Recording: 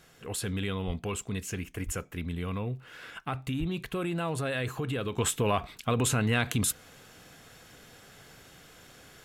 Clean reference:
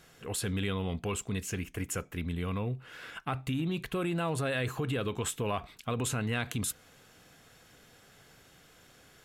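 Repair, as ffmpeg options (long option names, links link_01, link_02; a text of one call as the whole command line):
ffmpeg -i in.wav -filter_complex "[0:a]adeclick=threshold=4,asplit=3[link_01][link_02][link_03];[link_01]afade=type=out:start_time=0.86:duration=0.02[link_04];[link_02]highpass=frequency=140:width=0.5412,highpass=frequency=140:width=1.3066,afade=type=in:start_time=0.86:duration=0.02,afade=type=out:start_time=0.98:duration=0.02[link_05];[link_03]afade=type=in:start_time=0.98:duration=0.02[link_06];[link_04][link_05][link_06]amix=inputs=3:normalize=0,asplit=3[link_07][link_08][link_09];[link_07]afade=type=out:start_time=1.85:duration=0.02[link_10];[link_08]highpass=frequency=140:width=0.5412,highpass=frequency=140:width=1.3066,afade=type=in:start_time=1.85:duration=0.02,afade=type=out:start_time=1.97:duration=0.02[link_11];[link_09]afade=type=in:start_time=1.97:duration=0.02[link_12];[link_10][link_11][link_12]amix=inputs=3:normalize=0,asplit=3[link_13][link_14][link_15];[link_13]afade=type=out:start_time=3.59:duration=0.02[link_16];[link_14]highpass=frequency=140:width=0.5412,highpass=frequency=140:width=1.3066,afade=type=in:start_time=3.59:duration=0.02,afade=type=out:start_time=3.71:duration=0.02[link_17];[link_15]afade=type=in:start_time=3.71:duration=0.02[link_18];[link_16][link_17][link_18]amix=inputs=3:normalize=0,asetnsamples=nb_out_samples=441:pad=0,asendcmd='5.18 volume volume -5.5dB',volume=0dB" out.wav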